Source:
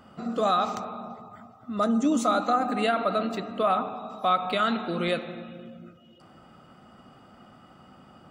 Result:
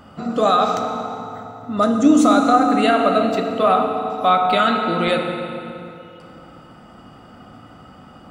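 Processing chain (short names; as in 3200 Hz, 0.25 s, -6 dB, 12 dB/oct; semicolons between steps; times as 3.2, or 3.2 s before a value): low shelf 82 Hz +6 dB; on a send: reverb RT60 3.0 s, pre-delay 3 ms, DRR 4 dB; on the sum: gain +7 dB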